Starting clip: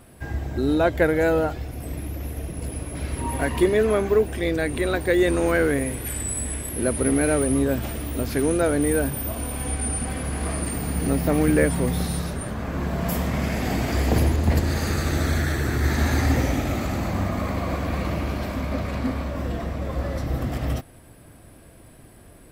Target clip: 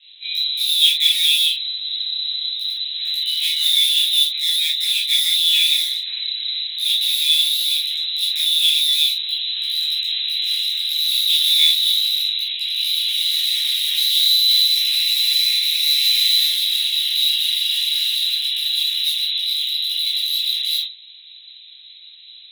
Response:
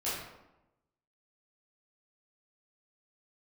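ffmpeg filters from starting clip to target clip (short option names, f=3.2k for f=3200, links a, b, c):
-filter_complex "[0:a]bandreject=f=60:t=h:w=6,bandreject=f=120:t=h:w=6,bandreject=f=180:t=h:w=6,bandreject=f=240:t=h:w=6,bandreject=f=300:t=h:w=6,bandreject=f=360:t=h:w=6,lowpass=f=3.4k:t=q:w=0.5098,lowpass=f=3.4k:t=q:w=0.6013,lowpass=f=3.4k:t=q:w=0.9,lowpass=f=3.4k:t=q:w=2.563,afreqshift=-4000,aeval=exprs='val(0)*sin(2*PI*76*n/s)':c=same,asplit=2[a][b];[b]aeval=exprs='(mod(10.6*val(0)+1,2)-1)/10.6':c=same,volume=-7.5dB[c];[a][c]amix=inputs=2:normalize=0,aexciter=amount=12.5:drive=1.4:freq=2.1k,lowshelf=f=320:g=-11.5[d];[1:a]atrim=start_sample=2205,atrim=end_sample=3969[e];[d][e]afir=irnorm=-1:irlink=0,afftfilt=real='re*gte(b*sr/1024,780*pow(1800/780,0.5+0.5*sin(2*PI*3.2*pts/sr)))':imag='im*gte(b*sr/1024,780*pow(1800/780,0.5+0.5*sin(2*PI*3.2*pts/sr)))':win_size=1024:overlap=0.75,volume=-17dB"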